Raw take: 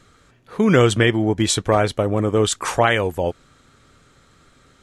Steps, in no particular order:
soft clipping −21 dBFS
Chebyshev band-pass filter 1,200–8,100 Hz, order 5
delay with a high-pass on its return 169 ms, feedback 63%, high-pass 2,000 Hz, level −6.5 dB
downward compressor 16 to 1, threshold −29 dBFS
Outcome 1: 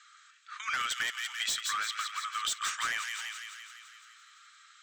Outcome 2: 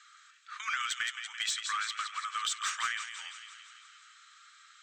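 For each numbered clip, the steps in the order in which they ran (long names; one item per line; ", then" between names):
Chebyshev band-pass filter, then soft clipping, then delay with a high-pass on its return, then downward compressor
Chebyshev band-pass filter, then downward compressor, then delay with a high-pass on its return, then soft clipping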